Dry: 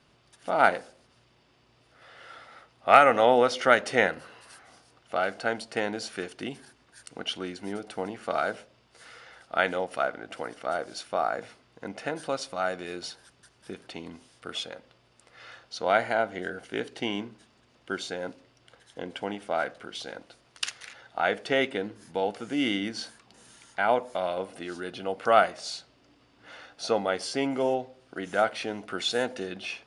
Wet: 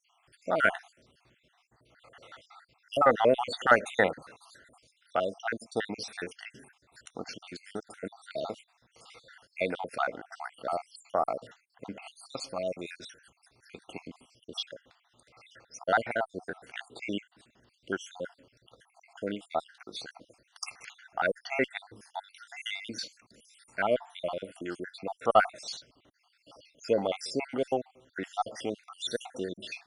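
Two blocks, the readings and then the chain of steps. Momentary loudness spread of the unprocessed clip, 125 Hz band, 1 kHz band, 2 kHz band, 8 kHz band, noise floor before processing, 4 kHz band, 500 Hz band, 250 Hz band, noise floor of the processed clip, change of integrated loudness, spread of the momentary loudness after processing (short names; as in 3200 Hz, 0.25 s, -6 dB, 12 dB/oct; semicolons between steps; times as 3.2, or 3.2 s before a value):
19 LU, -3.0 dB, -5.0 dB, -3.5 dB, -4.5 dB, -63 dBFS, -5.5 dB, -4.0 dB, -5.0 dB, -73 dBFS, -4.0 dB, 20 LU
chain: random spectral dropouts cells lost 63%; added harmonics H 4 -34 dB, 5 -43 dB, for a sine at -5 dBFS; vibrato 9.1 Hz 24 cents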